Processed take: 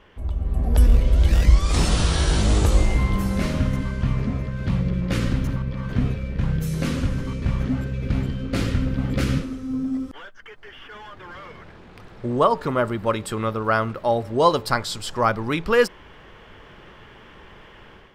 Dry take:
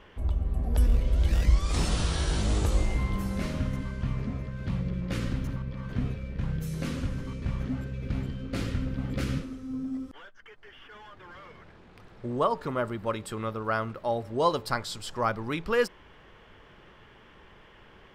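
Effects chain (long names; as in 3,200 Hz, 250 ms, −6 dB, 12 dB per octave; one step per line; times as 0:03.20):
automatic gain control gain up to 8 dB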